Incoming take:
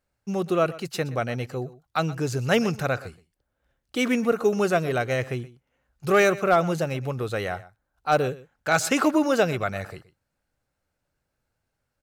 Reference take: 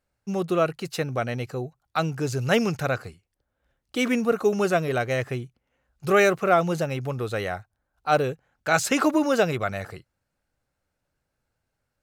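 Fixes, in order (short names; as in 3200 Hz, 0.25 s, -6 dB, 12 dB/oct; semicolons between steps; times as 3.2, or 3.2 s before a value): clip repair -10.5 dBFS; inverse comb 0.123 s -18.5 dB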